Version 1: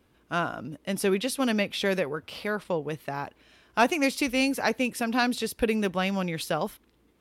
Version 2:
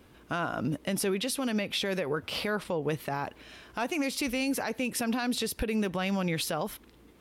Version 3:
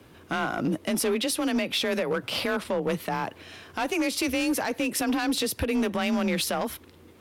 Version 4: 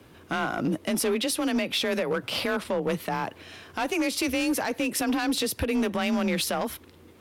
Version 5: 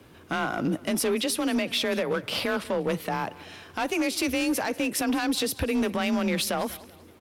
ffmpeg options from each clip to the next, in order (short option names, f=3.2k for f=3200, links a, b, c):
-af "acompressor=threshold=-30dB:ratio=6,alimiter=level_in=5.5dB:limit=-24dB:level=0:latency=1:release=83,volume=-5.5dB,volume=8dB"
-af "afreqshift=29,asoftclip=type=hard:threshold=-25dB,volume=4.5dB"
-af anull
-af "aecho=1:1:192|384|576:0.1|0.039|0.0152"